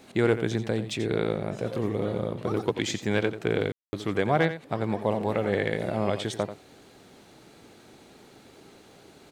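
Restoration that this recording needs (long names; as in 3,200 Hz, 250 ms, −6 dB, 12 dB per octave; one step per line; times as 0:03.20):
ambience match 0:03.72–0:03.93
echo removal 88 ms −11.5 dB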